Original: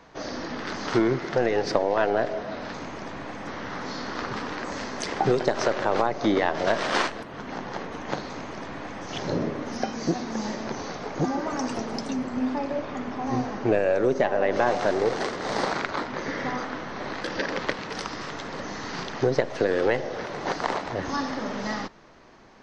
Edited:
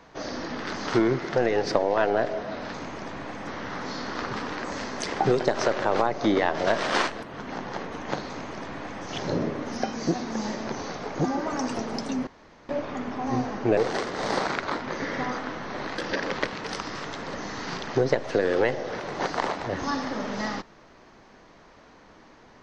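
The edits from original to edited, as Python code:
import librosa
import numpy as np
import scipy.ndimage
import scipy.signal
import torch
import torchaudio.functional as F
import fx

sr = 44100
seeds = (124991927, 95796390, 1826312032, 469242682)

y = fx.edit(x, sr, fx.room_tone_fill(start_s=12.27, length_s=0.42),
    fx.cut(start_s=13.77, length_s=1.26), tone=tone)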